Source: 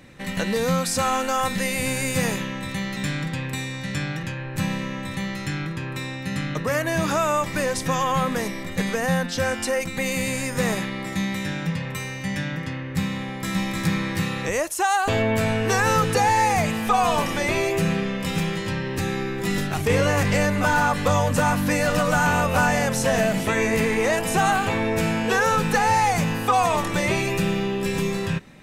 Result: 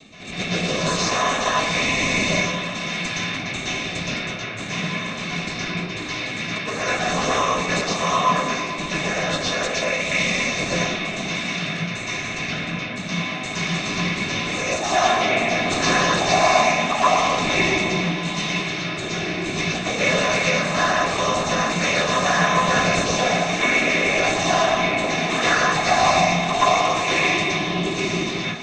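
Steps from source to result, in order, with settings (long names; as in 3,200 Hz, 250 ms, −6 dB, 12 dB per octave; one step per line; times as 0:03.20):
stylus tracing distortion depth 0.085 ms
first difference
reversed playback
upward compression, threshold −39 dBFS
reversed playback
cochlear-implant simulation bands 12
in parallel at −12 dB: sample-and-hold swept by an LFO 13×, swing 100% 0.58 Hz
on the sum: high-frequency loss of the air 59 metres
feedback echo with a band-pass in the loop 114 ms, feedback 84%, band-pass 790 Hz, level −11 dB
convolution reverb RT60 0.45 s, pre-delay 117 ms, DRR −8 dB
level +6 dB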